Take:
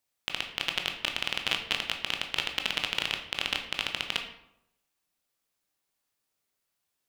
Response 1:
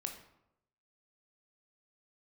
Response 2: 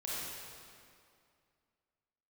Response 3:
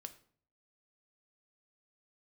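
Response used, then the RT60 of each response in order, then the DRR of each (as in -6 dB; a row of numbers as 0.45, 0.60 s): 1; 0.85, 2.3, 0.55 s; 3.5, -8.0, 8.0 dB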